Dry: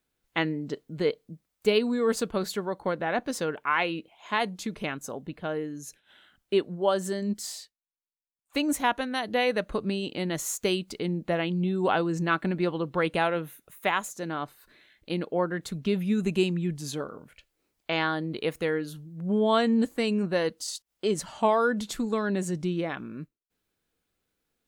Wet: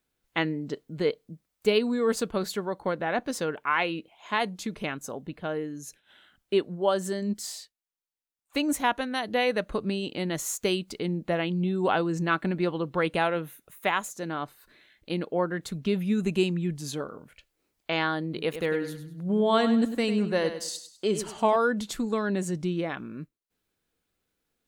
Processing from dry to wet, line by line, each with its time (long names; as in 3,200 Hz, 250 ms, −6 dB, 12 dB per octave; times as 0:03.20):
0:18.26–0:21.56: repeating echo 100 ms, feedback 32%, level −10 dB